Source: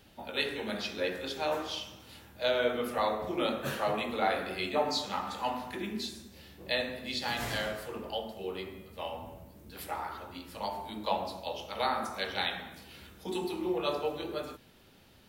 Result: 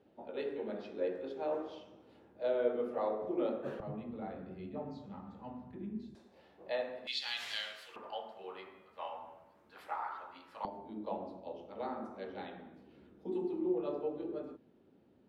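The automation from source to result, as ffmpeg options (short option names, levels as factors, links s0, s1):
-af "asetnsamples=n=441:p=0,asendcmd='3.8 bandpass f 150;6.15 bandpass f 700;7.07 bandpass f 3300;7.96 bandpass f 1100;10.65 bandpass f 310',bandpass=f=410:t=q:w=1.4:csg=0"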